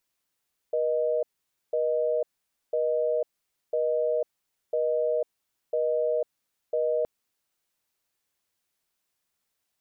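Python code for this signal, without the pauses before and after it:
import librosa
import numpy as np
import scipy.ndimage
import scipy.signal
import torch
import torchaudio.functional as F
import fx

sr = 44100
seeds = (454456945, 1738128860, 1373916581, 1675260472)

y = fx.call_progress(sr, length_s=6.32, kind='busy tone', level_db=-25.5)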